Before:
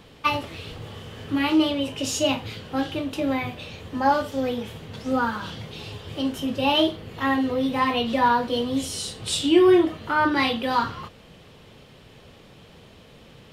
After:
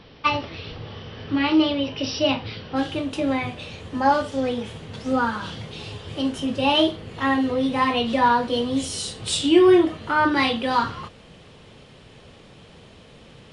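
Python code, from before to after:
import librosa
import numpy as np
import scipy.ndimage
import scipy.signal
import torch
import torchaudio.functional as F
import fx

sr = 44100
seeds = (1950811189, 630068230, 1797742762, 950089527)

y = fx.brickwall_lowpass(x, sr, high_hz=fx.steps((0.0, 5900.0), (2.75, 11000.0)))
y = y * librosa.db_to_amplitude(1.5)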